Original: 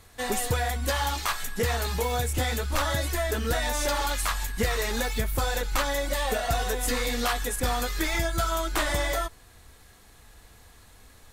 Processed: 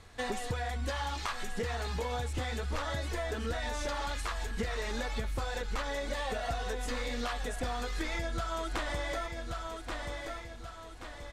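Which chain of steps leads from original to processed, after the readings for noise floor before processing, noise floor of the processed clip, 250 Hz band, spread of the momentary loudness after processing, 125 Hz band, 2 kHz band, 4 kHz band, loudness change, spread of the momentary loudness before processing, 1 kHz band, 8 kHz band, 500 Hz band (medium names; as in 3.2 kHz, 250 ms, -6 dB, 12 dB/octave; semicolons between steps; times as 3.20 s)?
-54 dBFS, -46 dBFS, -6.5 dB, 5 LU, -7.0 dB, -7.5 dB, -9.0 dB, -8.5 dB, 2 LU, -7.5 dB, -13.5 dB, -7.0 dB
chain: feedback delay 1129 ms, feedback 41%, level -12 dB; compression, threshold -31 dBFS, peak gain reduction 10 dB; distance through air 71 m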